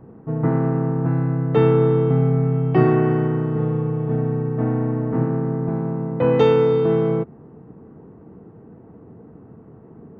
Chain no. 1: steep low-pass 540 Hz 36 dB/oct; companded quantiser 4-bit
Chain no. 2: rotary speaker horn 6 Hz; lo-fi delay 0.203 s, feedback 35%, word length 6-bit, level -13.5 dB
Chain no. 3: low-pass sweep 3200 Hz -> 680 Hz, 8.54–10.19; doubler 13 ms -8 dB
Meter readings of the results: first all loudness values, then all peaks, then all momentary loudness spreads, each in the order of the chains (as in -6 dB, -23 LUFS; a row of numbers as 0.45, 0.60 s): -19.5, -22.0, -19.0 LUFS; -6.0, -5.5, -3.0 dBFS; 8, 8, 7 LU